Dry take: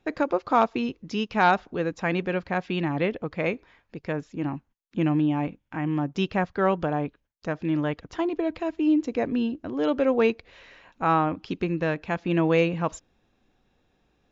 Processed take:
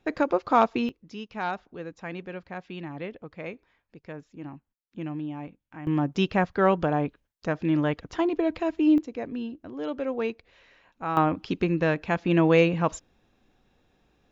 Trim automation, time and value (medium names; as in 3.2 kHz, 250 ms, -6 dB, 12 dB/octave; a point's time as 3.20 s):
+0.5 dB
from 0.89 s -10.5 dB
from 5.87 s +1.5 dB
from 8.98 s -7.5 dB
from 11.17 s +2 dB